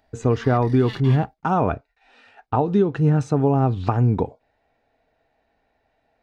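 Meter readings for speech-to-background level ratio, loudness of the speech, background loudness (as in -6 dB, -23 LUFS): 19.5 dB, -20.5 LUFS, -40.0 LUFS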